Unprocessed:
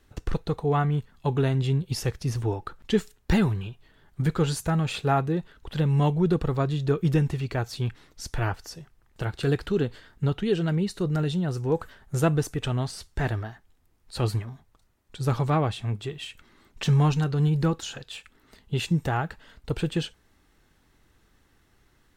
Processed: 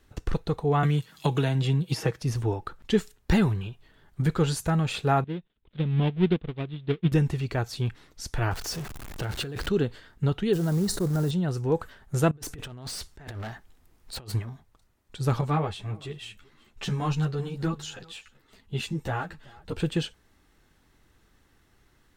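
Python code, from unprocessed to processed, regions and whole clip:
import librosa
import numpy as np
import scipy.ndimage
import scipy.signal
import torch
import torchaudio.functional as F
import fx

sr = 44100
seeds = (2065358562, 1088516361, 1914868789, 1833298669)

y = fx.chain(x, sr, fx.highpass(hz=140.0, slope=12),
    fx.comb(ms=6.3, depth=0.5),
    fx.band_squash(depth_pct=100), at=(0.83, 2.22))
y = fx.chain(y, sr, fx.dead_time(dead_ms=0.3),
    fx.curve_eq(hz=(110.0, 210.0, 1200.0, 3600.0, 5900.0), db=(0, 4, -5, 5, -27)),
    fx.upward_expand(threshold_db=-30.0, expansion=2.5), at=(5.24, 7.12))
y = fx.chain(y, sr, fx.zero_step(step_db=-37.5),
    fx.over_compress(threshold_db=-30.0, ratio=-1.0), at=(8.51, 9.69))
y = fx.chain(y, sr, fx.quant_float(bits=2),
    fx.peak_eq(hz=2700.0, db=-14.0, octaves=1.2),
    fx.sustainer(db_per_s=61.0), at=(10.53, 11.31))
y = fx.chain(y, sr, fx.peak_eq(hz=100.0, db=-3.0, octaves=0.85),
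    fx.over_compress(threshold_db=-34.0, ratio=-0.5),
    fx.clip_hard(threshold_db=-33.0), at=(12.31, 14.32))
y = fx.chain(y, sr, fx.echo_single(ms=381, db=-23.5),
    fx.ensemble(), at=(15.41, 19.8))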